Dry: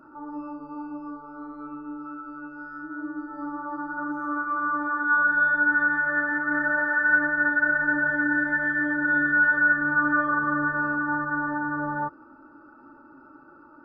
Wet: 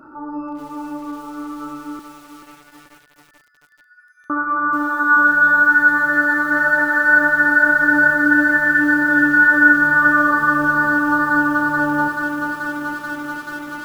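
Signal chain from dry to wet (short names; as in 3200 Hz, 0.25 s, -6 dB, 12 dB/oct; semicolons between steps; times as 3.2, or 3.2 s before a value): 1.99–4.3 steep high-pass 1800 Hz 72 dB/oct; lo-fi delay 0.433 s, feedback 80%, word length 8-bit, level -8 dB; gain +7.5 dB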